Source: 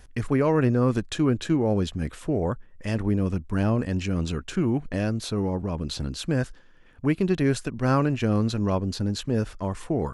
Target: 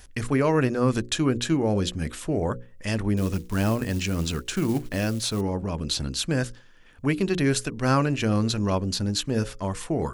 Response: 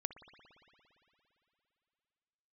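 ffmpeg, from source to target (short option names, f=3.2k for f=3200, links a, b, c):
-filter_complex "[0:a]bandreject=f=60:t=h:w=6,bandreject=f=120:t=h:w=6,bandreject=f=180:t=h:w=6,bandreject=f=240:t=h:w=6,bandreject=f=300:t=h:w=6,bandreject=f=360:t=h:w=6,bandreject=f=420:t=h:w=6,bandreject=f=480:t=h:w=6,bandreject=f=540:t=h:w=6,asettb=1/sr,asplit=3[a][b][c];[a]atrim=end=3.174[d];[b]atrim=start=3.17:end=5.41,asetpts=PTS-STARTPTS,afade=t=in:d=0.004:c=qsin,afade=t=out:st=2.236:d=0.004:c=qsin,acrusher=bits=7:mode=log:mix=0:aa=0.000001[e];[c]atrim=start=5.406[f];[d][e]acrossfade=d=0.004:c1=hsin:c2=qsin[g];[g][f]acrossfade=d=0.004:c1=qsin:c2=hsin,highshelf=f=2.4k:g=9"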